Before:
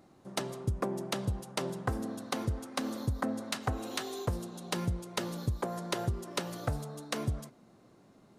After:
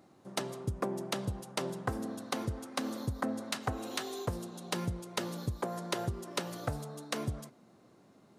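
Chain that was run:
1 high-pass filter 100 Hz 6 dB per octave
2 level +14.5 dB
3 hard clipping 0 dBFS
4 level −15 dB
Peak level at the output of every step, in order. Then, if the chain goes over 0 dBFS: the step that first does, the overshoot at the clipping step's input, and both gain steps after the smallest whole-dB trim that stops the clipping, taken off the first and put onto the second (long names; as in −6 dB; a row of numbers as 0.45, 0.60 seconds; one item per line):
−16.5, −2.0, −2.0, −17.0 dBFS
no step passes full scale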